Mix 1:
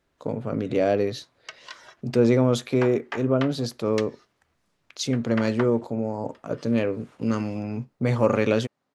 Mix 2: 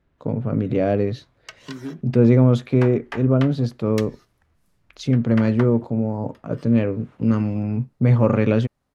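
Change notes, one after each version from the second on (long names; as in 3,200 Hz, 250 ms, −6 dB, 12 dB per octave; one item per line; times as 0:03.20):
first voice: add bass and treble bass +10 dB, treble −12 dB
second voice: unmuted
background: remove band-pass filter 210–6,800 Hz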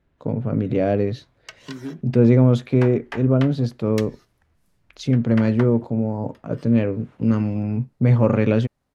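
master: add parametric band 1,200 Hz −2.5 dB 0.3 octaves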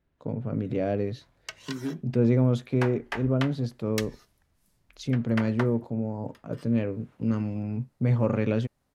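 first voice −7.5 dB
master: add high-shelf EQ 7,100 Hz +6 dB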